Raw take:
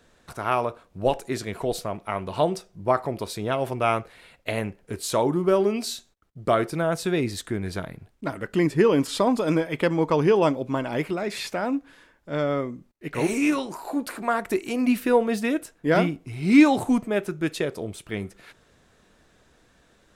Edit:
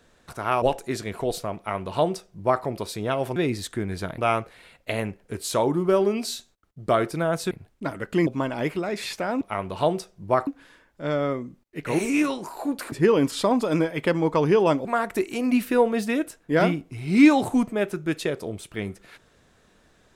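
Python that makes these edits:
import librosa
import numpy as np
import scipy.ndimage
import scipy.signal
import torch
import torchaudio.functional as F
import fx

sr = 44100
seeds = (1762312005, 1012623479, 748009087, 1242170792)

y = fx.edit(x, sr, fx.cut(start_s=0.62, length_s=0.41),
    fx.duplicate(start_s=1.98, length_s=1.06, to_s=11.75),
    fx.move(start_s=7.1, length_s=0.82, to_s=3.77),
    fx.move(start_s=8.68, length_s=1.93, to_s=14.2), tone=tone)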